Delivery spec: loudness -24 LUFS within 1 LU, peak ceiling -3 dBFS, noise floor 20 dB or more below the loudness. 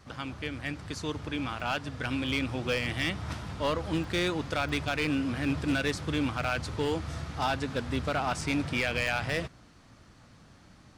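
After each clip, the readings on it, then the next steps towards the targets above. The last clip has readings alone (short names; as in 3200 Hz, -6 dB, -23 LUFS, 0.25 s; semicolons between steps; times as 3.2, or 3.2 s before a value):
clipped 1.0%; flat tops at -21.5 dBFS; dropouts 6; longest dropout 2.2 ms; loudness -31.0 LUFS; peak -21.5 dBFS; loudness target -24.0 LUFS
-> clip repair -21.5 dBFS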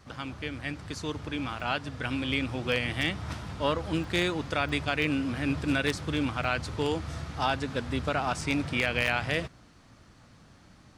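clipped 0.0%; dropouts 6; longest dropout 2.2 ms
-> interpolate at 1.6/4.04/4.69/6.44/8.41/9.07, 2.2 ms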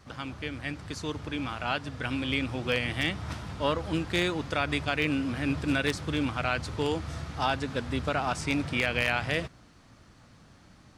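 dropouts 0; loudness -30.0 LUFS; peak -12.5 dBFS; loudness target -24.0 LUFS
-> gain +6 dB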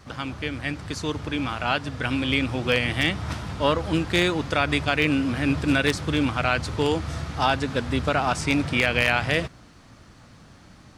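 loudness -24.0 LUFS; peak -6.5 dBFS; noise floor -50 dBFS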